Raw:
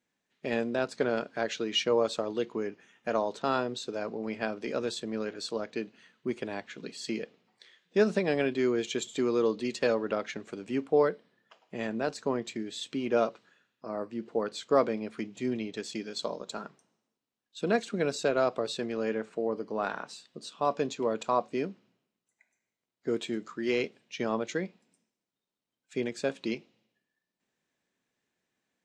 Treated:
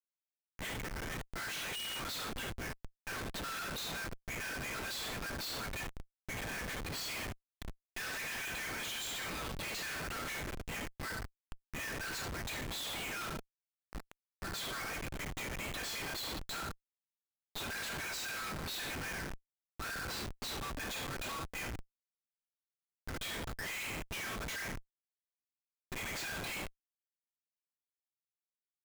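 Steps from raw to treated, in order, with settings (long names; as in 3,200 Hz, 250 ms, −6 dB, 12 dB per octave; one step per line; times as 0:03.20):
turntable start at the beginning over 1.56 s
Butterworth high-pass 1,500 Hz 48 dB per octave
comb filter 4.5 ms, depth 54%
gain into a clipping stage and back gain 24 dB
reverb whose tail is shaped and stops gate 230 ms falling, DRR 2 dB
comparator with hysteresis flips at −45.5 dBFS
level +2 dB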